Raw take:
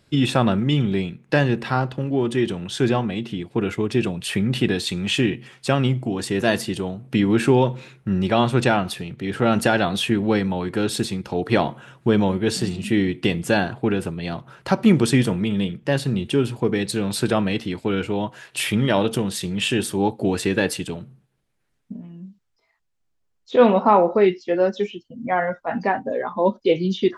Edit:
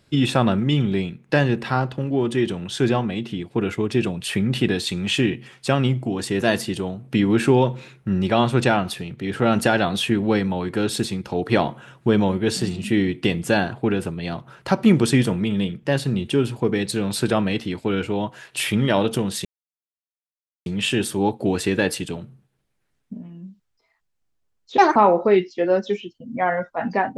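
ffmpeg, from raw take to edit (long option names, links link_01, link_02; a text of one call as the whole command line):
ffmpeg -i in.wav -filter_complex "[0:a]asplit=4[link_01][link_02][link_03][link_04];[link_01]atrim=end=19.45,asetpts=PTS-STARTPTS,afade=type=out:start_time=19.446:duration=0.004:curve=hsin,apad=pad_dur=1.21[link_05];[link_02]atrim=start=19.45:end=23.574,asetpts=PTS-STARTPTS,afade=type=in:duration=0.004:curve=hsin[link_06];[link_03]atrim=start=23.57:end=23.86,asetpts=PTS-STARTPTS,asetrate=71442,aresample=44100,atrim=end_sample=7894,asetpts=PTS-STARTPTS[link_07];[link_04]atrim=start=23.856[link_08];[link_05][link_06]concat=n=2:v=0:a=1[link_09];[link_09][link_07]acrossfade=duration=0.004:curve1=hsin:curve2=hsin[link_10];[link_10][link_08]acrossfade=duration=0.004:curve1=hsin:curve2=hsin" out.wav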